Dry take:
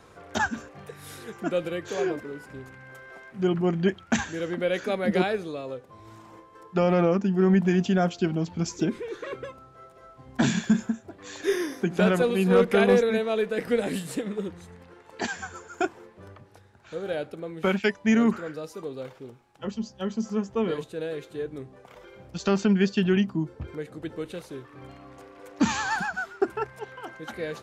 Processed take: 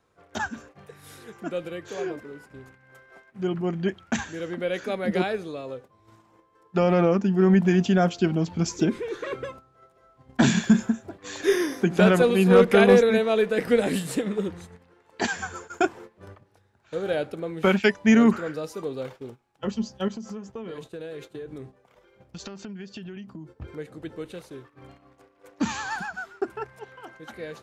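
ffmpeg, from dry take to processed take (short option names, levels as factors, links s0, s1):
-filter_complex "[0:a]asettb=1/sr,asplit=3[s0][s1][s2];[s0]atrim=end=20.084[s3];[s1]atrim=start=20.08:end=23.62,asetpts=PTS-STARTPTS,afade=t=in:d=0.004:c=qsin,afade=t=out:st=3.536:d=0.004:c=qsin,acompressor=threshold=0.0178:ratio=12:attack=3.2:release=140:knee=1:detection=peak[s4];[s2]atrim=start=23.616[s5];[s3][s4]acrossfade=d=0.004:c1=hsin:c2=qsin[s6];[s6][s5]acrossfade=d=0.004:c1=qsin:c2=hsin,agate=range=0.251:threshold=0.00562:ratio=16:detection=peak,dynaudnorm=f=620:g=21:m=3.55,volume=0.631"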